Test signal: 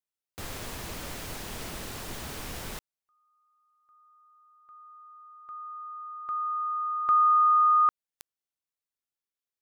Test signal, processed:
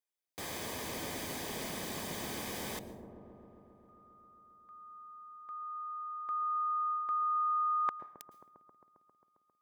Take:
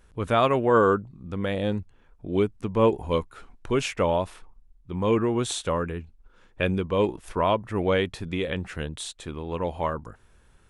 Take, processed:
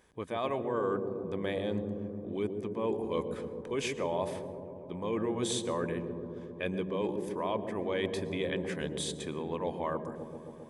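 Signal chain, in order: low shelf 120 Hz -8.5 dB; reverse; compressor 6:1, threshold -30 dBFS; reverse; notch comb 1400 Hz; dark delay 0.134 s, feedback 79%, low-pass 460 Hz, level -3.5 dB; plate-style reverb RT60 0.76 s, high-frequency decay 0.65×, pre-delay 0.1 s, DRR 17 dB

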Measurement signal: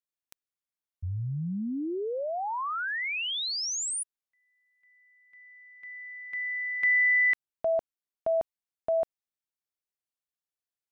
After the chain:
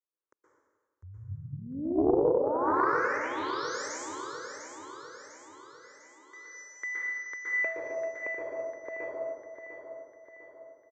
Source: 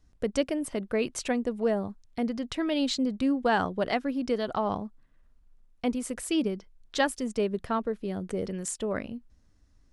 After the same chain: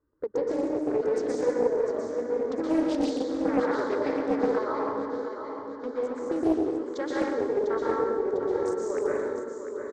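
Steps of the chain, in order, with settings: Wiener smoothing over 15 samples; reverb removal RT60 0.63 s; HPF 370 Hz 12 dB/oct; tilt -3.5 dB/oct; compressor, threshold -28 dBFS; fixed phaser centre 720 Hz, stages 6; feedback echo 0.7 s, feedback 50%, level -8 dB; plate-style reverb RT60 1.6 s, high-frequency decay 0.85×, pre-delay 0.11 s, DRR -7 dB; downsampling 16000 Hz; Doppler distortion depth 0.4 ms; gain +1.5 dB

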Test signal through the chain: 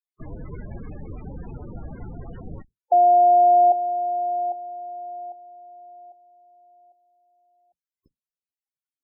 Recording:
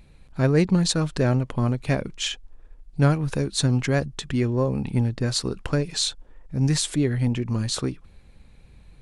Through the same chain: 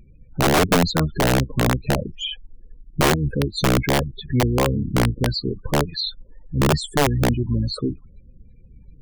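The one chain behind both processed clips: octaver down 1 oct, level -6 dB; loudest bins only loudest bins 16; wrapped overs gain 13.5 dB; gain +3 dB

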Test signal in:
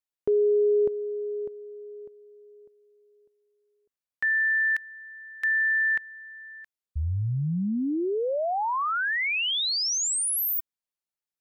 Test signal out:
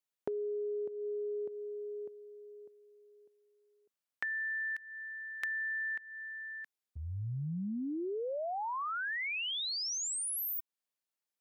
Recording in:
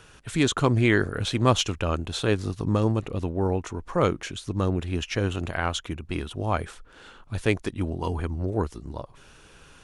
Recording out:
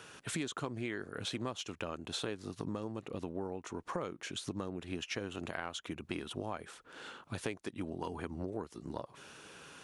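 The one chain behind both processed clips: HPF 170 Hz 12 dB/oct; compressor 12:1, threshold -35 dBFS

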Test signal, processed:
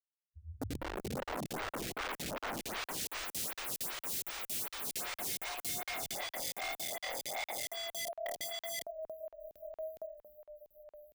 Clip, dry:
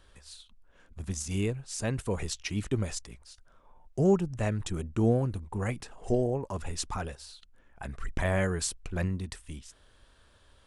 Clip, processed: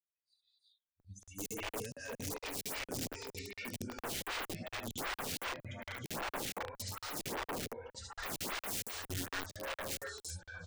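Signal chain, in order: per-bin expansion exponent 3; echoes that change speed 0.772 s, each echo -1 st, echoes 3, each echo -6 dB; LPF 3200 Hz 6 dB/oct; low shelf 120 Hz -7.5 dB; non-linear reverb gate 0.33 s rising, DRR -6.5 dB; in parallel at 0 dB: compressor 12:1, threshold -36 dBFS; on the sum: HPF 90 Hz 6 dB/oct; band shelf 820 Hz -8.5 dB 1.1 oct; on a send: early reflections 21 ms -10 dB, 39 ms -17.5 dB, 74 ms -3.5 dB; on the sum: wrapped overs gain 27.5 dB; crackling interface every 0.23 s, samples 2048, zero, from 1; photocell phaser 2.6 Hz; gain -3.5 dB

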